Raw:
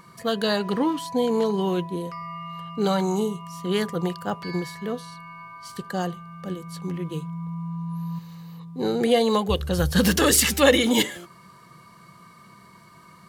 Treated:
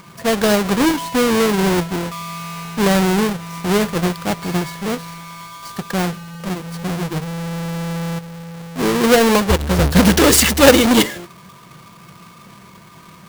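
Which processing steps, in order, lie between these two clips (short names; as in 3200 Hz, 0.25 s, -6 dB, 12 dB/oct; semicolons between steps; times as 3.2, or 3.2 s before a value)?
half-waves squared off; gain +3 dB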